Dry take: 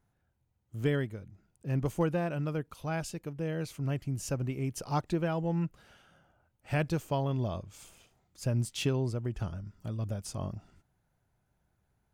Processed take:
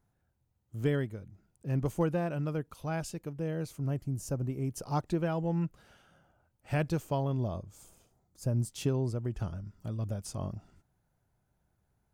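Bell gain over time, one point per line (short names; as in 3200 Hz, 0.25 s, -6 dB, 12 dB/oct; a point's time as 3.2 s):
bell 2600 Hz 1.8 oct
3.33 s -3.5 dB
4.23 s -14.5 dB
5.2 s -3 dB
7.03 s -3 dB
7.76 s -13 dB
8.49 s -13 dB
9.32 s -3.5 dB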